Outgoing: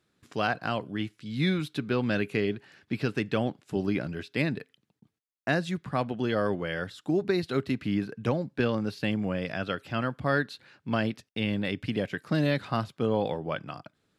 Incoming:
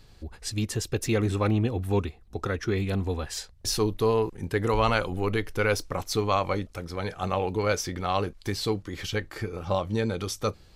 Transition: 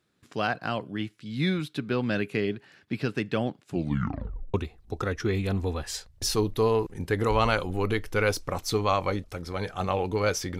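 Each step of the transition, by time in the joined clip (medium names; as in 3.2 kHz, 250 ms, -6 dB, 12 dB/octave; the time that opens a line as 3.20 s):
outgoing
3.68 s: tape stop 0.86 s
4.54 s: go over to incoming from 1.97 s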